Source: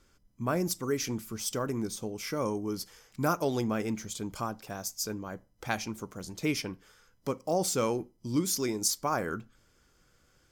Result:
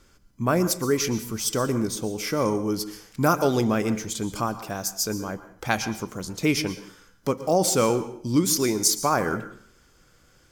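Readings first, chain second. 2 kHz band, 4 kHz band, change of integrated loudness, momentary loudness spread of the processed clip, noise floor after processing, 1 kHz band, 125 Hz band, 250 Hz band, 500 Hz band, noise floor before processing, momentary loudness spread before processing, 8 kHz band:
+8.0 dB, +7.5 dB, +7.5 dB, 11 LU, -59 dBFS, +8.0 dB, +7.5 dB, +7.5 dB, +7.5 dB, -67 dBFS, 11 LU, +7.5 dB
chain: plate-style reverb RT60 0.54 s, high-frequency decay 0.9×, pre-delay 105 ms, DRR 13 dB; trim +7.5 dB

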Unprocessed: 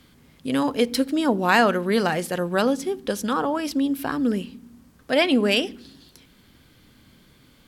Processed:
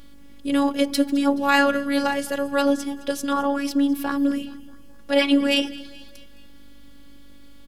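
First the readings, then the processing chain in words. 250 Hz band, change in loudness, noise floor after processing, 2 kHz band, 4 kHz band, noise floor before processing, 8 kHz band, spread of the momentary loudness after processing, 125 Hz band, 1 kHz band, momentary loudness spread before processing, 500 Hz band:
+2.0 dB, +0.5 dB, -42 dBFS, 0.0 dB, +0.5 dB, -56 dBFS, +0.5 dB, 10 LU, under -10 dB, -0.5 dB, 9 LU, -1.0 dB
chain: mains buzz 50 Hz, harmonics 11, -44 dBFS -9 dB/octave; robot voice 281 Hz; feedback delay 213 ms, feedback 53%, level -19.5 dB; trim +2.5 dB

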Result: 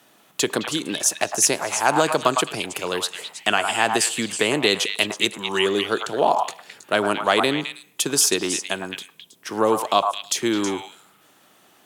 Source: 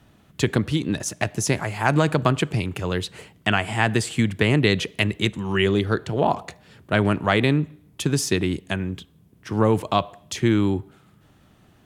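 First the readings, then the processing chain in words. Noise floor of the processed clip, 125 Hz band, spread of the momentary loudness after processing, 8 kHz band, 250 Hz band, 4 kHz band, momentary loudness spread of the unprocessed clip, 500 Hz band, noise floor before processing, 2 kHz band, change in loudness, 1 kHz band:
-57 dBFS, -15.0 dB, 9 LU, +10.5 dB, -4.0 dB, +6.0 dB, 9 LU, +1.5 dB, -56 dBFS, +1.5 dB, +1.5 dB, +4.5 dB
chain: treble shelf 5.1 kHz +10 dB; on a send: repeats whose band climbs or falls 107 ms, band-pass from 1 kHz, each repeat 1.4 oct, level -2 dB; on the sum: dynamic bell 2 kHz, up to -6 dB, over -37 dBFS, Q 1.8; high-pass 380 Hz 12 dB/octave; trim +3 dB

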